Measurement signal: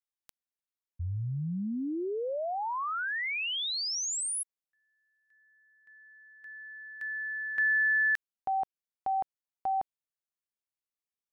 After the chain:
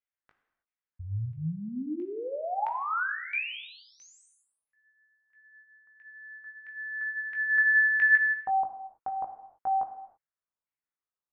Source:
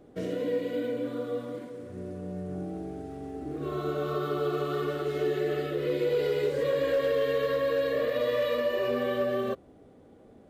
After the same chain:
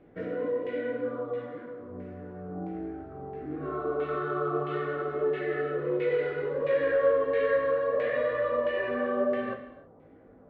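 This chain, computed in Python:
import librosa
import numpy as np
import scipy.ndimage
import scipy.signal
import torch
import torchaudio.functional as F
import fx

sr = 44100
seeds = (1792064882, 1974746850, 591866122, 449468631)

y = fx.filter_lfo_lowpass(x, sr, shape='saw_down', hz=1.5, low_hz=970.0, high_hz=2300.0, q=2.4)
y = fx.chorus_voices(y, sr, voices=2, hz=0.76, base_ms=19, depth_ms=1.3, mix_pct=35)
y = fx.rev_gated(y, sr, seeds[0], gate_ms=350, shape='falling', drr_db=6.0)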